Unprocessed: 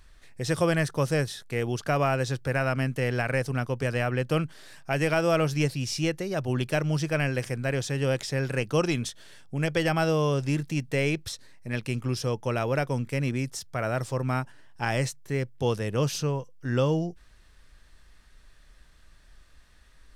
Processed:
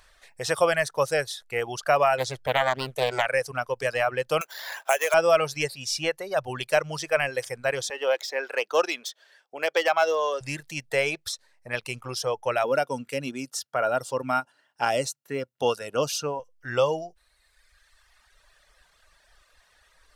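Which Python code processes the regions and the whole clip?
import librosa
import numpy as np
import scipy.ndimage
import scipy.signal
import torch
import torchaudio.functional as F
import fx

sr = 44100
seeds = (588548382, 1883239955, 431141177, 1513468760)

y = fx.chain(x, sr, fx.low_shelf(hz=340.0, db=4.5),
    fx.doppler_dist(depth_ms=0.62), at=(2.18, 3.26))
y = fx.chain(y, sr, fx.highpass(hz=460.0, slope=24),
    fx.sample_hold(seeds[0], rate_hz=8800.0, jitter_pct=0),
    fx.band_squash(depth_pct=70), at=(4.41, 5.14))
y = fx.chain(y, sr, fx.self_delay(depth_ms=0.052),
    fx.highpass(hz=290.0, slope=24),
    fx.peak_eq(hz=9500.0, db=-10.5, octaves=0.68), at=(7.9, 10.41))
y = fx.chain(y, sr, fx.highpass(hz=120.0, slope=12),
    fx.dynamic_eq(hz=1900.0, q=1.6, threshold_db=-47.0, ratio=4.0, max_db=-8),
    fx.small_body(hz=(260.0, 1400.0, 2800.0), ring_ms=45, db=11), at=(12.64, 16.4))
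y = fx.dereverb_blind(y, sr, rt60_s=1.5)
y = fx.low_shelf_res(y, sr, hz=400.0, db=-12.5, q=1.5)
y = F.gain(torch.from_numpy(y), 4.5).numpy()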